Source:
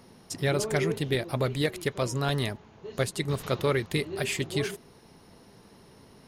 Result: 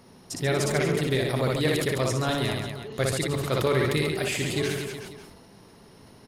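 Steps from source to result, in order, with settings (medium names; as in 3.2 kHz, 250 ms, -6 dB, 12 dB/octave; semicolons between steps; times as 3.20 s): on a send: reverse bouncing-ball echo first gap 60 ms, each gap 1.3×, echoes 5; on the sum: decay stretcher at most 34 dB/s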